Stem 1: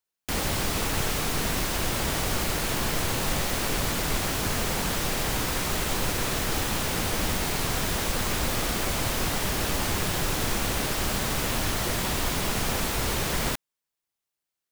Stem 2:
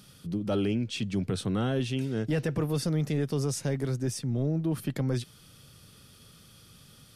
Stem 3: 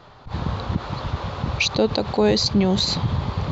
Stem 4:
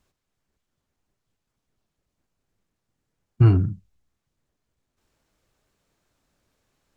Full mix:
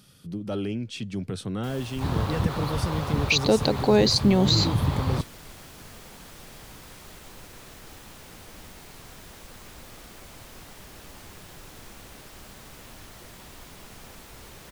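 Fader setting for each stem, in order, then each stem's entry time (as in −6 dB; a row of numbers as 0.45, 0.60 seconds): −18.5, −2.0, −1.0, −10.5 decibels; 1.35, 0.00, 1.70, 1.10 seconds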